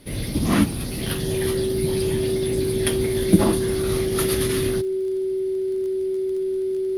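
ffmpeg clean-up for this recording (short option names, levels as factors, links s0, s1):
-af "adeclick=t=4,bandreject=f=380:w=30"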